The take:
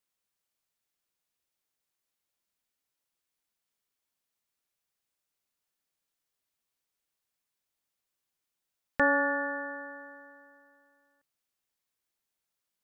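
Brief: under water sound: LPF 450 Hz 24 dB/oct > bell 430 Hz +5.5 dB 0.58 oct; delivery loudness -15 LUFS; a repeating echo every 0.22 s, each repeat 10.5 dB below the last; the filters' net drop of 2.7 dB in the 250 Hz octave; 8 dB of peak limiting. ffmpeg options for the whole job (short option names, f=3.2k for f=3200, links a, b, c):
-af "equalizer=f=250:t=o:g=-4,alimiter=limit=-21dB:level=0:latency=1,lowpass=f=450:w=0.5412,lowpass=f=450:w=1.3066,equalizer=f=430:t=o:w=0.58:g=5.5,aecho=1:1:220|440|660:0.299|0.0896|0.0269,volume=27.5dB"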